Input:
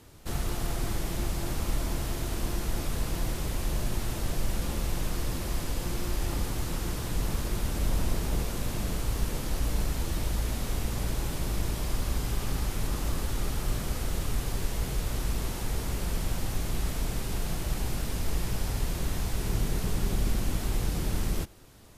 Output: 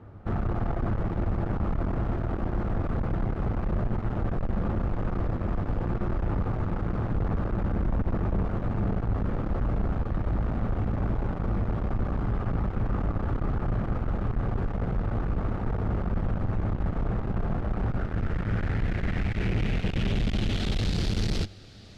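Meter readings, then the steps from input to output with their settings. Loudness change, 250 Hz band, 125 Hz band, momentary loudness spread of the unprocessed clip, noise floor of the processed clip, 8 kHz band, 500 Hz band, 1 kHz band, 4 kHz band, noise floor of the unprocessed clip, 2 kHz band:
+3.0 dB, +5.5 dB, +5.0 dB, 2 LU, −33 dBFS, below −15 dB, +4.0 dB, +3.5 dB, can't be measured, −35 dBFS, +0.5 dB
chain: low-pass filter sweep 1,100 Hz → 4,400 Hz, 0:17.65–0:21.09
thirty-one-band graphic EQ 100 Hz +10 dB, 200 Hz +7 dB, 1,000 Hz −11 dB
tube saturation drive 28 dB, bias 0.6
level +6.5 dB

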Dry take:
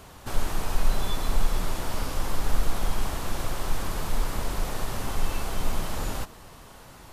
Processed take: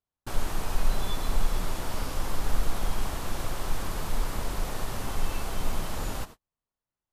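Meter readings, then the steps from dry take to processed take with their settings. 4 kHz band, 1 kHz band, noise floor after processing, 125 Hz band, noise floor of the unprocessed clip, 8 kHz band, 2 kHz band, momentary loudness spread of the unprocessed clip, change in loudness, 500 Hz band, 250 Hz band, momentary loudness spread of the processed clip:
−2.0 dB, −2.0 dB, below −85 dBFS, −2.0 dB, −48 dBFS, −2.0 dB, −2.0 dB, 7 LU, −2.0 dB, −2.0 dB, −2.0 dB, 3 LU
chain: noise gate −38 dBFS, range −45 dB
level −2 dB

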